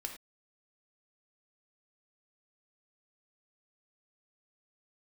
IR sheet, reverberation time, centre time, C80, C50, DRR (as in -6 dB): no single decay rate, 18 ms, 12.0 dB, 8.0 dB, 3.0 dB